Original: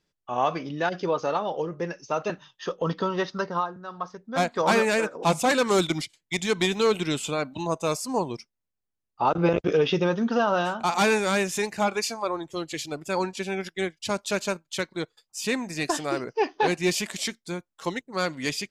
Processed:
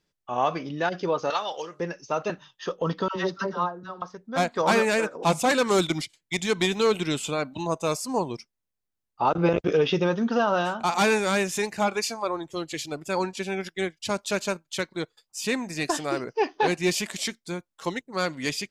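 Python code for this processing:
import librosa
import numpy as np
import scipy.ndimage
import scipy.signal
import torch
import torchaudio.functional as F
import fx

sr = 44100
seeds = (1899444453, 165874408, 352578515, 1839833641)

y = fx.weighting(x, sr, curve='ITU-R 468', at=(1.3, 1.8))
y = fx.dispersion(y, sr, late='lows', ms=77.0, hz=720.0, at=(3.08, 4.02))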